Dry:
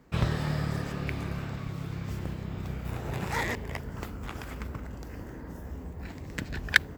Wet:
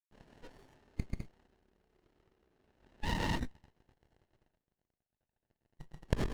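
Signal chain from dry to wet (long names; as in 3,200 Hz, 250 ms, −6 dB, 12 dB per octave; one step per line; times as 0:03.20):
dead-zone distortion −32.5 dBFS
dynamic equaliser 1,200 Hz, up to +5 dB, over −52 dBFS, Q 2.1
loudspeakers that aren't time-aligned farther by 37 metres −9 dB, 51 metres −1 dB, 81 metres −1 dB
convolution reverb, pre-delay 3 ms, DRR 7 dB
noise reduction from a noise print of the clip's start 28 dB
tempo change 1.1×
notch comb filter 1,300 Hz
compressor whose output falls as the input rises −35 dBFS, ratio −1
loudspeaker in its box 410–4,200 Hz, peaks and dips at 550 Hz −9 dB, 940 Hz +6 dB, 1,700 Hz +4 dB, 2,700 Hz +10 dB, 4,100 Hz +8 dB
windowed peak hold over 33 samples
level −2 dB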